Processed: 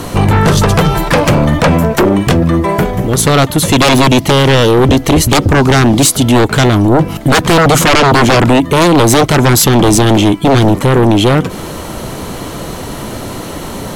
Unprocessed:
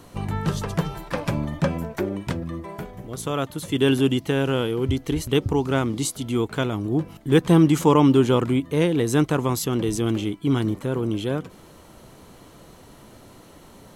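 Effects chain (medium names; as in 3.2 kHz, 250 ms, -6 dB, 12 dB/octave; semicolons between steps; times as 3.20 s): in parallel at -0.5 dB: compression, threshold -31 dBFS, peak gain reduction 18 dB; on the sum: sine folder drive 15 dB, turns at -4 dBFS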